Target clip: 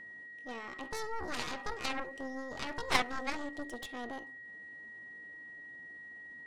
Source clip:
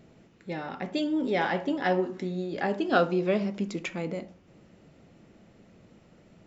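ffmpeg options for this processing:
ffmpeg -i in.wav -af "asetrate=64194,aresample=44100,atempo=0.686977,aeval=exprs='0.316*(cos(1*acos(clip(val(0)/0.316,-1,1)))-cos(1*PI/2))+0.0794*(cos(3*acos(clip(val(0)/0.316,-1,1)))-cos(3*PI/2))+0.02*(cos(4*acos(clip(val(0)/0.316,-1,1)))-cos(4*PI/2))+0.0282*(cos(7*acos(clip(val(0)/0.316,-1,1)))-cos(7*PI/2))+0.0141*(cos(8*acos(clip(val(0)/0.316,-1,1)))-cos(8*PI/2))':channel_layout=same,aeval=exprs='val(0)+0.00562*sin(2*PI*1900*n/s)':channel_layout=same,volume=-1.5dB" out.wav

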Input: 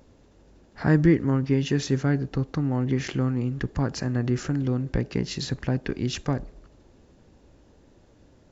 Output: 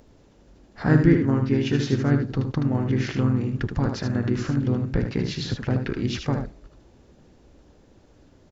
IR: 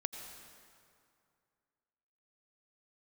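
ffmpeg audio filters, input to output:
-filter_complex "[0:a]aecho=1:1:77:0.473,asplit=2[link_01][link_02];[link_02]asetrate=37084,aresample=44100,atempo=1.18921,volume=-5dB[link_03];[link_01][link_03]amix=inputs=2:normalize=0,acrossover=split=5800[link_04][link_05];[link_05]acompressor=threshold=-55dB:ratio=4:attack=1:release=60[link_06];[link_04][link_06]amix=inputs=2:normalize=0"

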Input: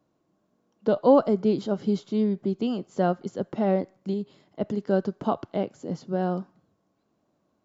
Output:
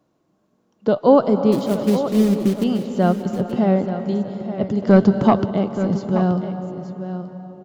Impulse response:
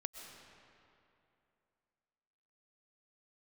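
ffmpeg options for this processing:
-filter_complex "[0:a]lowshelf=frequency=88:gain=-3.5,asettb=1/sr,asplit=3[link_01][link_02][link_03];[link_01]atrim=end=1.524[link_04];[link_02]atrim=start=1.52:end=2.64,asetpts=PTS-STARTPTS,afade=type=in:duration=0.004:curve=qsin,afade=type=out:start_time=1.116:duration=0.004:curve=qsin,acrusher=bits=4:mode=log:mix=0:aa=0.000001[link_05];[link_03]atrim=start=2.636[link_06];[link_04][link_05]acrossfade=duration=0.004:curve1=hsin:curve2=qsin[link_07];[link_07][link_06]acrossfade=duration=0.004:curve1=qsin:curve2=hsin,asubboost=boost=2.5:cutoff=230,asplit=2[link_08][link_09];[1:a]atrim=start_sample=2205,asetrate=31311,aresample=44100[link_10];[link_09][link_10]afir=irnorm=-1:irlink=0,volume=2.5dB[link_11];[link_08][link_11]amix=inputs=2:normalize=0,asettb=1/sr,asplit=3[link_12][link_13][link_14];[link_12]atrim=end=4.824[link_15];[link_13]atrim=start=4.82:end=5.46,asetpts=PTS-STARTPTS,afade=type=in:duration=0.004:curve=qsin,afade=type=out:start_time=0.636:duration=0.004:curve=qsin,acontrast=75[link_16];[link_14]atrim=start=5.456[link_17];[link_15][link_16]acrossfade=duration=0.004:curve1=hsin:curve2=qsin[link_18];[link_18][link_17]acrossfade=duration=0.004:curve1=qsin:curve2=hsin,aecho=1:1:877:0.282,volume=-1dB"

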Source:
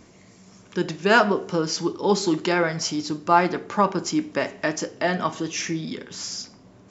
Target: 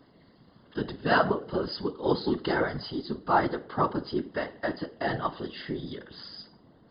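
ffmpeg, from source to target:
ffmpeg -i in.wav -af "asuperstop=centerf=2400:order=4:qfactor=3,afftfilt=real='re*between(b*sr/4096,110,5000)':imag='im*between(b*sr/4096,110,5000)':win_size=4096:overlap=0.75,afftfilt=real='hypot(re,im)*cos(2*PI*random(0))':imag='hypot(re,im)*sin(2*PI*random(1))':win_size=512:overlap=0.75" out.wav

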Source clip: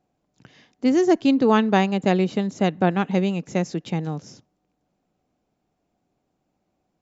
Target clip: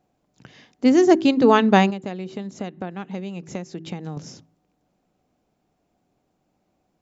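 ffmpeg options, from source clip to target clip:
ffmpeg -i in.wav -filter_complex "[0:a]bandreject=frequency=54.12:width_type=h:width=4,bandreject=frequency=108.24:width_type=h:width=4,bandreject=frequency=162.36:width_type=h:width=4,bandreject=frequency=216.48:width_type=h:width=4,bandreject=frequency=270.6:width_type=h:width=4,bandreject=frequency=324.72:width_type=h:width=4,bandreject=frequency=378.84:width_type=h:width=4,asettb=1/sr,asplit=3[link_01][link_02][link_03];[link_01]atrim=end=1.904[link_04];[link_02]atrim=start=1.9:end=4.17,asetpts=PTS-STARTPTS,afade=type=in:duration=0.004:curve=qsin,afade=type=out:start_time=2.266:duration=0.004:curve=qsin,acompressor=threshold=-32dB:ratio=6[link_05];[link_03]atrim=start=4.166[link_06];[link_04][link_05]acrossfade=duration=0.004:curve1=hsin:curve2=qsin[link_07];[link_07][link_06]acrossfade=duration=0.004:curve1=qsin:curve2=hsin,volume=3.5dB" out.wav

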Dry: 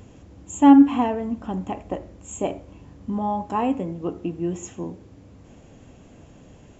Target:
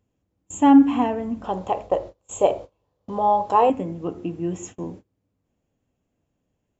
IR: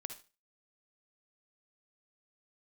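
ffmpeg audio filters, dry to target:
-filter_complex "[0:a]bandreject=frequency=70.81:width_type=h:width=4,bandreject=frequency=141.62:width_type=h:width=4,bandreject=frequency=212.43:width_type=h:width=4,bandreject=frequency=283.24:width_type=h:width=4,bandreject=frequency=354.05:width_type=h:width=4,agate=range=-27dB:threshold=-39dB:ratio=16:detection=peak,asettb=1/sr,asplit=3[link_01][link_02][link_03];[link_01]atrim=end=1.444[link_04];[link_02]atrim=start=1.44:end=3.7,asetpts=PTS-STARTPTS,afade=type=in:duration=0.004:curve=qsin,afade=type=out:start_time=2.256:duration=0.004:curve=qsin,equalizer=frequency=250:width_type=o:width=1:gain=-11,equalizer=frequency=500:width_type=o:width=1:gain=12,equalizer=frequency=1000:width_type=o:width=1:gain=6,equalizer=frequency=2000:width_type=o:width=1:gain=-3,equalizer=frequency=4000:width_type=o:width=1:gain=8[link_05];[link_03]atrim=start=3.696[link_06];[link_04][link_05]acrossfade=duration=0.004:curve1=hsin:curve2=qsin[link_07];[link_07][link_06]acrossfade=duration=0.004:curve1=qsin:curve2=hsin"

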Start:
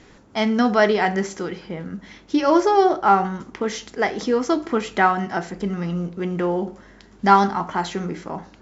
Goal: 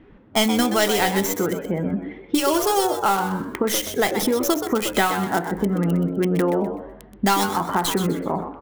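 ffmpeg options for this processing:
ffmpeg -i in.wav -filter_complex "[0:a]afftdn=noise_reduction=12:noise_floor=-38,acrossover=split=2400[link_01][link_02];[link_01]acompressor=threshold=-25dB:ratio=12[link_03];[link_02]acrusher=bits=4:dc=4:mix=0:aa=0.000001[link_04];[link_03][link_04]amix=inputs=2:normalize=0,aexciter=amount=2.5:drive=3.2:freq=2700,asplit=5[link_05][link_06][link_07][link_08][link_09];[link_06]adelay=126,afreqshift=93,volume=-9dB[link_10];[link_07]adelay=252,afreqshift=186,volume=-18.9dB[link_11];[link_08]adelay=378,afreqshift=279,volume=-28.8dB[link_12];[link_09]adelay=504,afreqshift=372,volume=-38.7dB[link_13];[link_05][link_10][link_11][link_12][link_13]amix=inputs=5:normalize=0,volume=7.5dB" out.wav

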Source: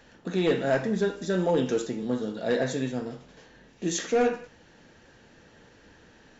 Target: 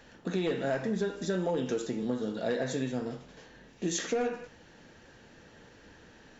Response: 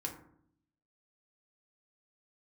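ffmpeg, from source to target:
-af "acompressor=threshold=-27dB:ratio=6"

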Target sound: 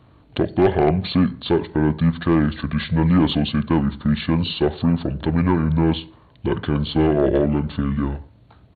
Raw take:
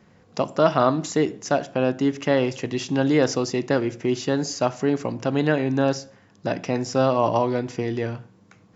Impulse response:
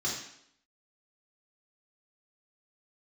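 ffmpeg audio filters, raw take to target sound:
-af "asetrate=26222,aresample=44100,atempo=1.68179,aeval=exprs='0.631*(cos(1*acos(clip(val(0)/0.631,-1,1)))-cos(1*PI/2))+0.0891*(cos(5*acos(clip(val(0)/0.631,-1,1)))-cos(5*PI/2))':channel_layout=same"

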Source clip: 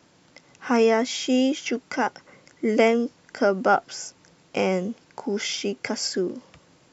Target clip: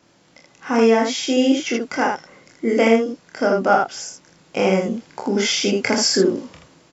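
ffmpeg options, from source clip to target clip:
ffmpeg -i in.wav -filter_complex "[0:a]asplit=2[link_01][link_02];[link_02]aecho=0:1:26|44|79:0.631|0.398|0.668[link_03];[link_01][link_03]amix=inputs=2:normalize=0,dynaudnorm=framelen=280:gausssize=7:maxgain=11.5dB,volume=-1dB" out.wav

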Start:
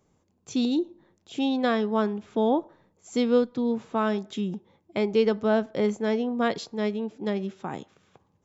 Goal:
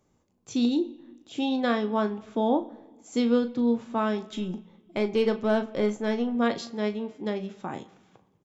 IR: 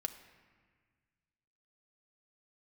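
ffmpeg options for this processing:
-filter_complex "[0:a]asplit=2[link_01][link_02];[link_02]aecho=0:1:17|38:0.224|0.282[link_03];[link_01][link_03]amix=inputs=2:normalize=0,asettb=1/sr,asplit=3[link_04][link_05][link_06];[link_04]atrim=end=4.274[link_07];[link_05]atrim=start=4.27:end=6.35,asetpts=PTS-STARTPTS,afade=type=in:duration=0.004:curve=qsin,afade=type=out:start_time=2.076:duration=0.004:curve=qsin,aeval=exprs='0.251*(cos(1*acos(clip(val(0)/0.251,-1,1)))-cos(1*PI/2))+0.00631*(cos(8*acos(clip(val(0)/0.251,-1,1)))-cos(8*PI/2))':channel_layout=same[link_08];[link_06]atrim=start=6.346[link_09];[link_07][link_08]acrossfade=duration=0.004:curve1=hsin:curve2=qsin[link_10];[link_10][link_09]acrossfade=duration=0.004:curve1=qsin:curve2=hsin,asplit=2[link_11][link_12];[1:a]atrim=start_sample=2205,asetrate=57330,aresample=44100[link_13];[link_12][link_13]afir=irnorm=-1:irlink=0,volume=0.5dB[link_14];[link_11][link_14]amix=inputs=2:normalize=0,volume=-6dB"

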